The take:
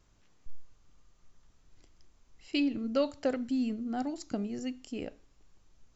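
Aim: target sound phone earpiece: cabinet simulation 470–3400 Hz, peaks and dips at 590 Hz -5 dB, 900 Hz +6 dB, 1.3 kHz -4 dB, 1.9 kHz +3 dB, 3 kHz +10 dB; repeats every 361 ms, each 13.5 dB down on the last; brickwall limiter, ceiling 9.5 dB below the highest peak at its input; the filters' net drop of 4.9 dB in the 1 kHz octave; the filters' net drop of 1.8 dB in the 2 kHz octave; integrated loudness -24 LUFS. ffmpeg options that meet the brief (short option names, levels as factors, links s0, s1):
-af "equalizer=f=1000:t=o:g=-7,equalizer=f=2000:t=o:g=-6.5,alimiter=level_in=1.68:limit=0.0631:level=0:latency=1,volume=0.596,highpass=470,equalizer=f=590:t=q:w=4:g=-5,equalizer=f=900:t=q:w=4:g=6,equalizer=f=1300:t=q:w=4:g=-4,equalizer=f=1900:t=q:w=4:g=3,equalizer=f=3000:t=q:w=4:g=10,lowpass=f=3400:w=0.5412,lowpass=f=3400:w=1.3066,aecho=1:1:361|722:0.211|0.0444,volume=11.9"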